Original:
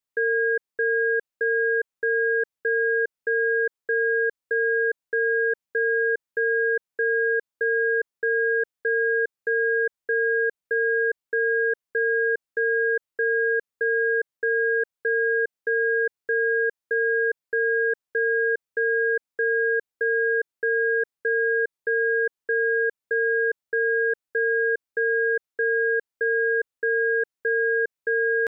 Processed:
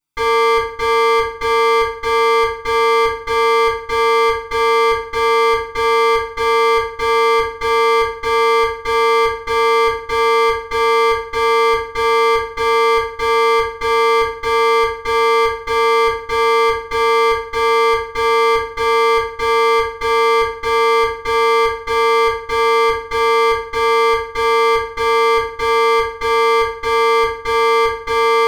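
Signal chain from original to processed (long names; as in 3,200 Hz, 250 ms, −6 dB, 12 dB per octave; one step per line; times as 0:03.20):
lower of the sound and its delayed copy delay 0.84 ms
feedback delay network reverb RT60 0.6 s, low-frequency decay 1.05×, high-frequency decay 0.7×, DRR −9.5 dB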